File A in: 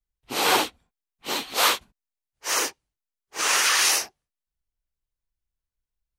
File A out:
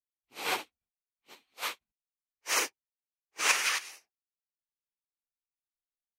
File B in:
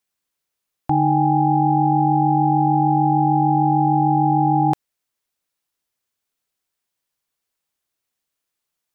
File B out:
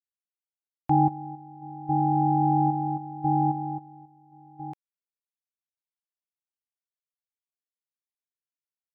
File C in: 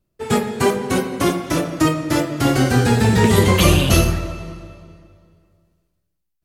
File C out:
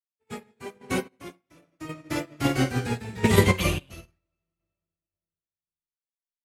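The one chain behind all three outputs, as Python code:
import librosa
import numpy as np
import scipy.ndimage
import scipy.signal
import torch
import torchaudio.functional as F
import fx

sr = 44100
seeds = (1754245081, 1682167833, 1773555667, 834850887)

y = fx.peak_eq(x, sr, hz=2300.0, db=6.5, octaves=0.5)
y = fx.tremolo_random(y, sr, seeds[0], hz=3.7, depth_pct=85)
y = fx.upward_expand(y, sr, threshold_db=-39.0, expansion=2.5)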